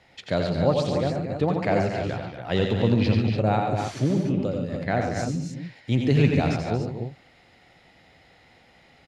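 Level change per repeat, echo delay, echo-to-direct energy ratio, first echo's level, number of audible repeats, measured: repeats not evenly spaced, 86 ms, −1.0 dB, −6.0 dB, 4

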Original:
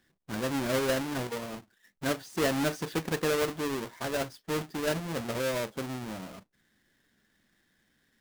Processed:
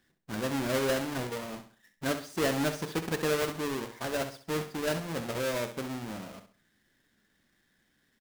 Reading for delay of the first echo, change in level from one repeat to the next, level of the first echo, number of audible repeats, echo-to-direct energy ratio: 66 ms, −9.5 dB, −10.0 dB, 3, −9.5 dB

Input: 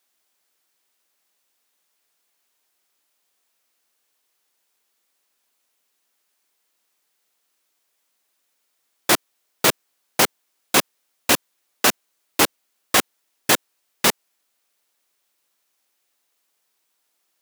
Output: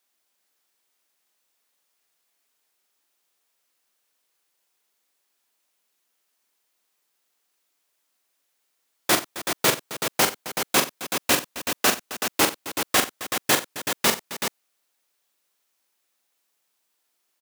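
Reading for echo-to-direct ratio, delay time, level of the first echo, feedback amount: −3.5 dB, 42 ms, −7.5 dB, repeats not evenly spaced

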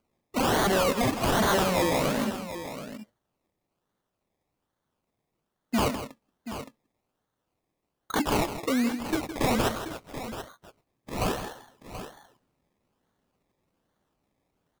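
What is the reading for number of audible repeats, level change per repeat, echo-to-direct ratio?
2, repeats not evenly spaced, −8.0 dB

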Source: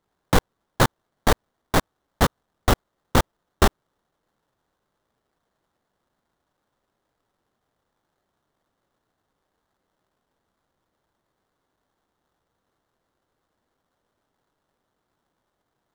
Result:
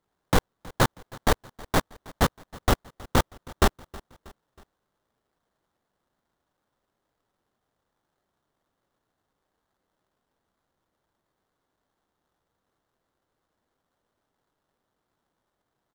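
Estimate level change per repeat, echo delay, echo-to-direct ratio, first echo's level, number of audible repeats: −6.0 dB, 319 ms, −21.0 dB, −22.0 dB, 3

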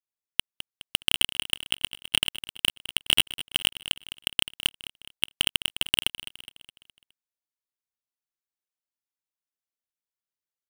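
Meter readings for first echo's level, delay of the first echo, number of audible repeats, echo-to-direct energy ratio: −14.0 dB, 208 ms, 4, −13.0 dB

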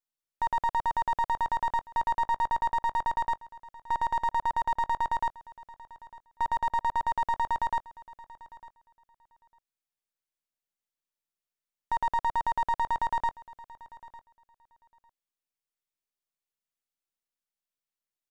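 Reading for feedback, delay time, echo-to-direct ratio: repeats not evenly spaced, 902 ms, −20.0 dB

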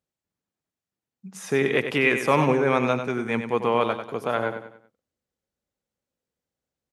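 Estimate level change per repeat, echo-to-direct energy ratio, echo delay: −8.0 dB, −8.0 dB, 95 ms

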